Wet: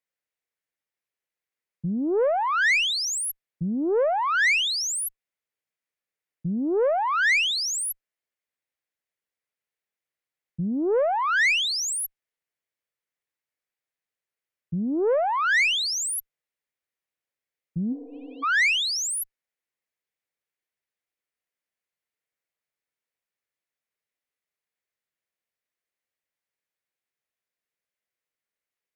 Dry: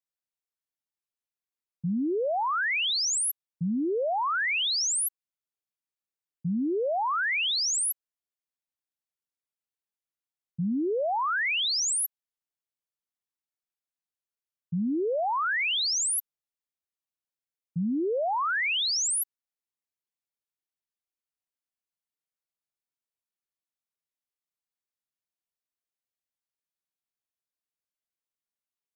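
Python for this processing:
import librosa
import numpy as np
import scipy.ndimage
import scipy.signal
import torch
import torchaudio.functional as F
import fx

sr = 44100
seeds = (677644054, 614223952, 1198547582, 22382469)

y = fx.graphic_eq_10(x, sr, hz=(125, 500, 2000), db=(4, 9, 11))
y = fx.tube_stage(y, sr, drive_db=16.0, bias=0.35)
y = fx.spec_repair(y, sr, seeds[0], start_s=17.94, length_s=0.47, low_hz=260.0, high_hz=2400.0, source='before')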